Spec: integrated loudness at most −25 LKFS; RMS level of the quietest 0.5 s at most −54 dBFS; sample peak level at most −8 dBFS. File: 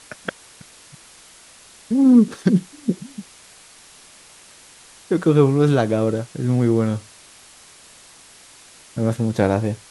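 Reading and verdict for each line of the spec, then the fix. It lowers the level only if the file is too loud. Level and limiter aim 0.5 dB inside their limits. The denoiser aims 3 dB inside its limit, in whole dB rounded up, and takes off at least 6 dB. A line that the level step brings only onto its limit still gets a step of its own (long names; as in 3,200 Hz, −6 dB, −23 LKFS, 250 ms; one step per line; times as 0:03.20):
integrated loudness −19.0 LKFS: out of spec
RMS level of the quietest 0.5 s −47 dBFS: out of spec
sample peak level −3.5 dBFS: out of spec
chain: broadband denoise 6 dB, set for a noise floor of −47 dBFS
level −6.5 dB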